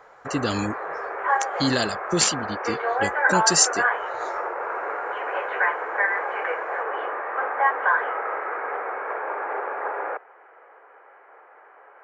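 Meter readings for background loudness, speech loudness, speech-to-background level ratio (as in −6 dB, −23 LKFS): −26.0 LKFS, −24.0 LKFS, 2.0 dB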